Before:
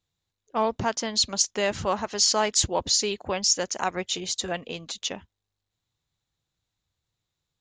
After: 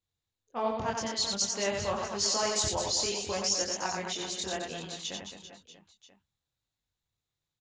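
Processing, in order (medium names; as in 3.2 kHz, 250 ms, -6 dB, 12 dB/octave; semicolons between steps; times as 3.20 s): chorus voices 2, 0.56 Hz, delay 23 ms, depth 3.2 ms; reverse bouncing-ball echo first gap 90 ms, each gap 1.4×, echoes 5; trim -4.5 dB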